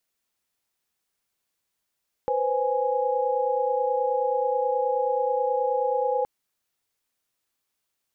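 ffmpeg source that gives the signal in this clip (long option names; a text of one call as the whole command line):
ffmpeg -f lavfi -i "aevalsrc='0.0501*(sin(2*PI*493.88*t)+sin(2*PI*523.25*t)+sin(2*PI*830.61*t))':duration=3.97:sample_rate=44100" out.wav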